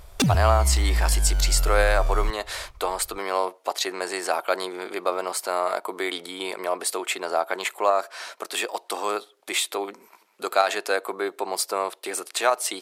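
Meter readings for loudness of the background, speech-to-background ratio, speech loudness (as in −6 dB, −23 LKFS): −25.0 LKFS, −1.0 dB, −26.0 LKFS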